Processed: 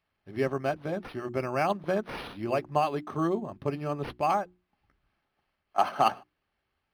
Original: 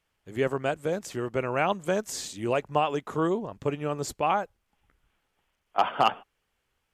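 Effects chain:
mains-hum notches 60/120/180/240/300/360 Hz
notch comb filter 480 Hz
linearly interpolated sample-rate reduction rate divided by 6×

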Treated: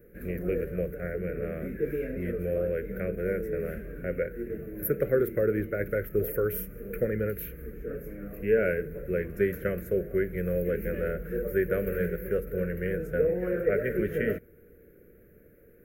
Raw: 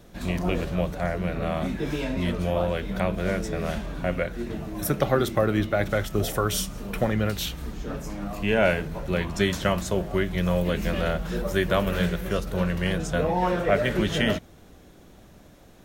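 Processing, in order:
drawn EQ curve 290 Hz 0 dB, 470 Hz +13 dB, 900 Hz −29 dB, 1,500 Hz +3 dB, 2,300 Hz −1 dB, 3,400 Hz −26 dB, 4,900 Hz −24 dB, 8,300 Hz −17 dB, 12,000 Hz +9 dB
level −7.5 dB

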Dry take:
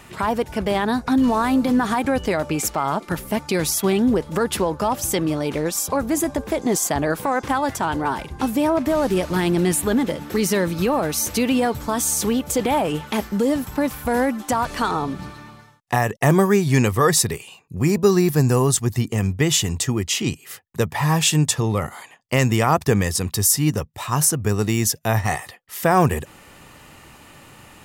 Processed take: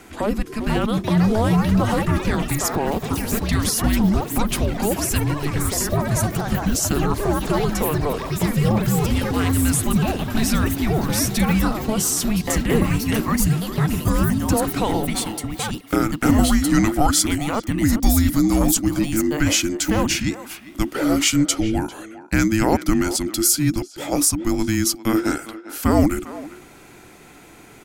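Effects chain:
delay with pitch and tempo change per echo 542 ms, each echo +5 semitones, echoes 3, each echo −6 dB
frequency shifter −440 Hz
far-end echo of a speakerphone 400 ms, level −14 dB

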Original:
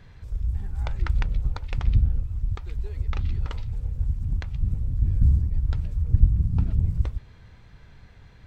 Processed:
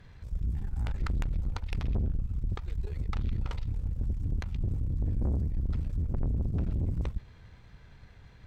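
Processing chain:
tube saturation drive 27 dB, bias 0.75
level +1.5 dB

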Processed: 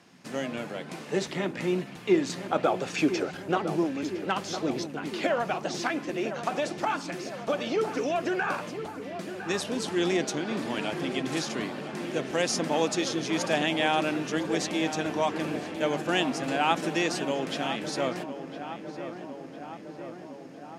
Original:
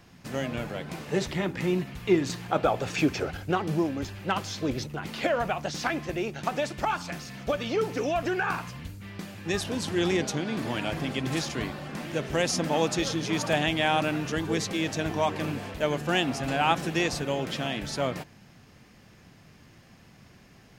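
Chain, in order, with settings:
Chebyshev band-pass filter 230–9,800 Hz, order 2
on a send: feedback echo with a low-pass in the loop 1,007 ms, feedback 73%, low-pass 1,900 Hz, level −10 dB

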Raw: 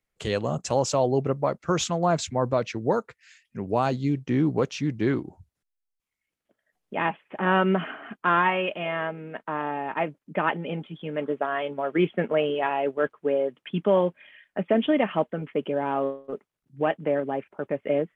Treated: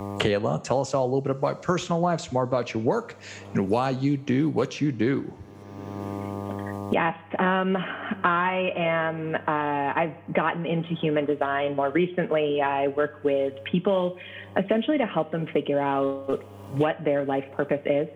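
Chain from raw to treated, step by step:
coupled-rooms reverb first 0.48 s, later 4.1 s, from −28 dB, DRR 14 dB
hum with harmonics 100 Hz, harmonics 12, −60 dBFS −5 dB per octave
multiband upward and downward compressor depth 100%

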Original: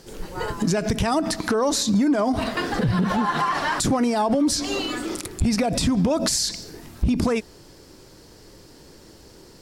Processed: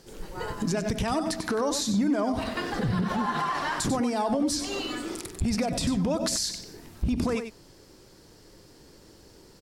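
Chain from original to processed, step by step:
single-tap delay 95 ms −8.5 dB
level −6 dB

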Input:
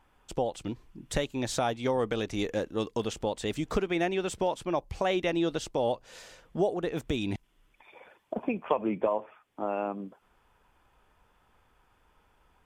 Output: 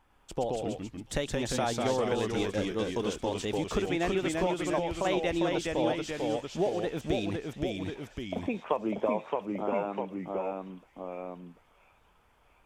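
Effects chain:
delay with pitch and tempo change per echo 103 ms, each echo −1 semitone, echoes 2
delay with a high-pass on its return 690 ms, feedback 57%, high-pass 2,500 Hz, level −11.5 dB
level −2 dB

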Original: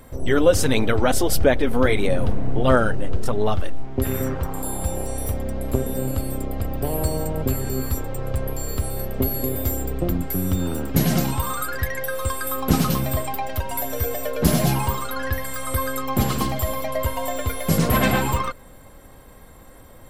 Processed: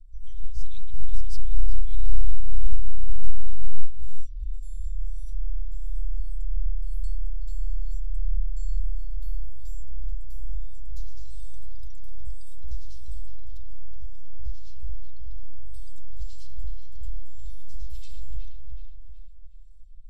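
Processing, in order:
inverse Chebyshev band-stop filter 120–1,700 Hz, stop band 60 dB
high-shelf EQ 3,200 Hz −10.5 dB
two-band tremolo in antiphase 1.8 Hz, depth 70%, crossover 1,000 Hz
head-to-tape spacing loss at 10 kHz 30 dB, from 0:13.57 at 10 kHz 43 dB, from 0:15.73 at 10 kHz 30 dB
delay with a low-pass on its return 371 ms, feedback 44%, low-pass 3,200 Hz, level −3.5 dB
level +8.5 dB

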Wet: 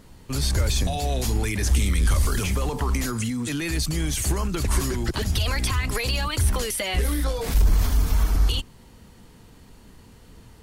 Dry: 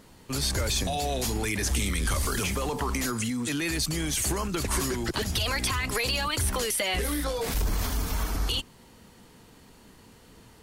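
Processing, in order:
low-shelf EQ 120 Hz +11.5 dB

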